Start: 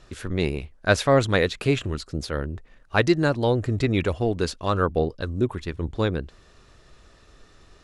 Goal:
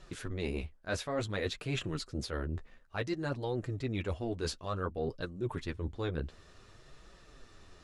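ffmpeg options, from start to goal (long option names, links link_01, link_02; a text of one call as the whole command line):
ffmpeg -i in.wav -af "flanger=delay=5.1:depth=8.8:regen=-17:speed=0.56:shape=triangular,areverse,acompressor=threshold=-32dB:ratio=6,areverse" out.wav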